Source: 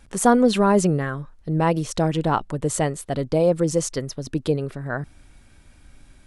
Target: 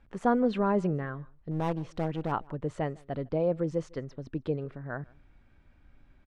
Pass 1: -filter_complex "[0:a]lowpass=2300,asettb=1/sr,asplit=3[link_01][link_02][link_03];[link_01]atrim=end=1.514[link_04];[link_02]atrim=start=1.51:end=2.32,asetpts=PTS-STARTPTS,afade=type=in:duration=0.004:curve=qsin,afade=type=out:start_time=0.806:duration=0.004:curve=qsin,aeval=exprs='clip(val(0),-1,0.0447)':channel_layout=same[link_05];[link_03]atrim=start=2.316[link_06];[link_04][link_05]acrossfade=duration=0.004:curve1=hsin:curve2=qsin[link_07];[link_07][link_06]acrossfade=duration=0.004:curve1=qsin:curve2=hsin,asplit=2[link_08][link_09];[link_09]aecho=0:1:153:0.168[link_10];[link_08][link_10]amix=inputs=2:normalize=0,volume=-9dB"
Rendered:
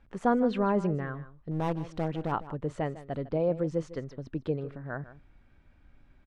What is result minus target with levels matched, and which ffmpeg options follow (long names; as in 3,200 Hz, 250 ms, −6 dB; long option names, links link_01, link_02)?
echo-to-direct +10.5 dB
-filter_complex "[0:a]lowpass=2300,asettb=1/sr,asplit=3[link_01][link_02][link_03];[link_01]atrim=end=1.514[link_04];[link_02]atrim=start=1.51:end=2.32,asetpts=PTS-STARTPTS,afade=type=in:duration=0.004:curve=qsin,afade=type=out:start_time=0.806:duration=0.004:curve=qsin,aeval=exprs='clip(val(0),-1,0.0447)':channel_layout=same[link_05];[link_03]atrim=start=2.316[link_06];[link_04][link_05]acrossfade=duration=0.004:curve1=hsin:curve2=qsin[link_07];[link_07][link_06]acrossfade=duration=0.004:curve1=qsin:curve2=hsin,asplit=2[link_08][link_09];[link_09]aecho=0:1:153:0.0501[link_10];[link_08][link_10]amix=inputs=2:normalize=0,volume=-9dB"